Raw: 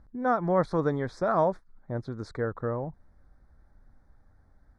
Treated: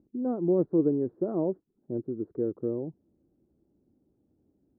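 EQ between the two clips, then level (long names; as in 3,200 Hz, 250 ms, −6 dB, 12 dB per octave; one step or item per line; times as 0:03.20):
high-pass filter 160 Hz 12 dB per octave
low-pass with resonance 350 Hz, resonance Q 3.8
high-frequency loss of the air 250 metres
−2.0 dB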